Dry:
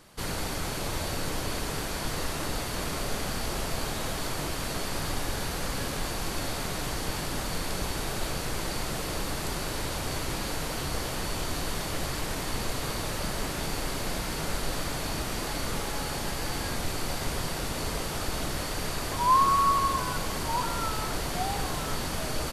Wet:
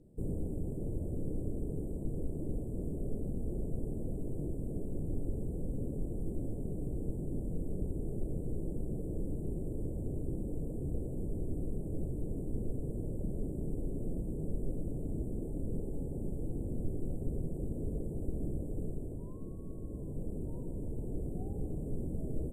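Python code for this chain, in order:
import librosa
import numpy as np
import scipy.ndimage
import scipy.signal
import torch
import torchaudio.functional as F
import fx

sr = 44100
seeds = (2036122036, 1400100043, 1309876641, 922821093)

y = fx.rider(x, sr, range_db=5, speed_s=0.5)
y = scipy.signal.sosfilt(scipy.signal.cheby2(4, 60, [1300.0, 8100.0], 'bandstop', fs=sr, output='sos'), y)
y = np.interp(np.arange(len(y)), np.arange(len(y))[::2], y[::2])
y = y * 10.0 ** (-3.0 / 20.0)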